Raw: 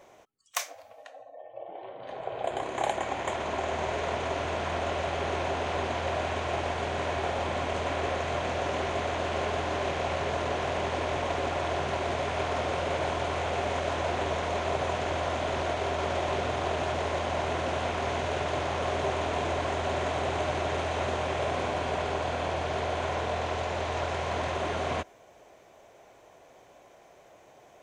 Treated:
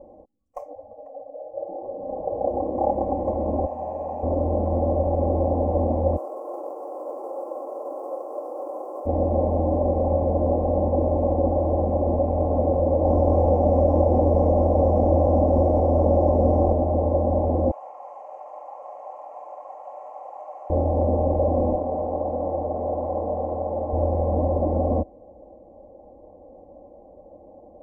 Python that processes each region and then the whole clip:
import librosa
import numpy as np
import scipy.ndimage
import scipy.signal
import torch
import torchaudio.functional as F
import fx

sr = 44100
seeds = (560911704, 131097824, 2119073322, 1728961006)

y = fx.chain(x, sr, fx.highpass(hz=1100.0, slope=6),
    fx.comb(ms=1.2, depth=0.43),
    fx.room_flutter(wall_m=8.5, rt60_s=0.41), at=(3.66, 4.23))
y = fx.envelope_flatten(y, sr, power=0.1, at=(6.16, 9.05), fade=0.02)
y = fx.steep_highpass(y, sr, hz=340.0, slope=48, at=(6.16, 9.05), fade=0.02)
y = fx.high_shelf_res(y, sr, hz=1600.0, db=-6.5, q=3.0, at=(6.16, 9.05), fade=0.02)
y = fx.chain(y, sr, fx.peak_eq(hz=5500.0, db=14.5, octaves=0.34),
    fx.env_flatten(amount_pct=100), at=(13.05, 16.73))
y = fx.chain(y, sr, fx.highpass(hz=980.0, slope=24),
    fx.high_shelf(hz=10000.0, db=9.0), at=(17.71, 20.7))
y = fx.chain(y, sr, fx.lowpass(hz=1600.0, slope=12),
    fx.tilt_eq(slope=3.0), at=(21.75, 23.93))
y = scipy.signal.sosfilt(scipy.signal.cheby2(4, 40, 1400.0, 'lowpass', fs=sr, output='sos'), y)
y = fx.low_shelf(y, sr, hz=150.0, db=6.5)
y = y + 0.95 * np.pad(y, (int(3.7 * sr / 1000.0), 0))[:len(y)]
y = y * 10.0 ** (7.5 / 20.0)